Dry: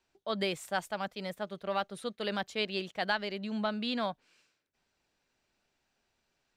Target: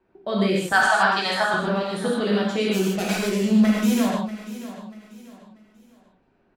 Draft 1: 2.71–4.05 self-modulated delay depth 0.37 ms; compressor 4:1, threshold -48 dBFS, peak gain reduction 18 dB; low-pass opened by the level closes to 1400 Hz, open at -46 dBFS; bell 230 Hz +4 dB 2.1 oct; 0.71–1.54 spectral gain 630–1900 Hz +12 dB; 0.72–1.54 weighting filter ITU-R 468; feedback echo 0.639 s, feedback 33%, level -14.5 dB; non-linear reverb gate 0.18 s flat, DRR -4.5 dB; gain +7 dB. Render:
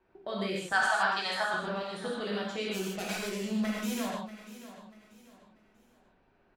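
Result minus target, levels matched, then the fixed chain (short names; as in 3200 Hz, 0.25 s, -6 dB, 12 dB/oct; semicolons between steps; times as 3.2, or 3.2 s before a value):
compressor: peak gain reduction +8 dB; 250 Hz band -3.5 dB
2.71–4.05 self-modulated delay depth 0.37 ms; compressor 4:1, threshold -37.5 dBFS, peak gain reduction 10 dB; low-pass opened by the level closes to 1400 Hz, open at -46 dBFS; bell 230 Hz +10.5 dB 2.1 oct; 0.71–1.54 spectral gain 630–1900 Hz +12 dB; 0.72–1.54 weighting filter ITU-R 468; feedback echo 0.639 s, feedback 33%, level -14.5 dB; non-linear reverb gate 0.18 s flat, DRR -4.5 dB; gain +7 dB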